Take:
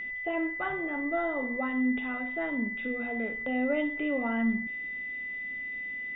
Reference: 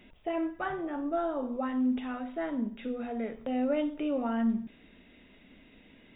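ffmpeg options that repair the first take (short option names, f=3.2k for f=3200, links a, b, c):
-af "bandreject=f=2k:w=30"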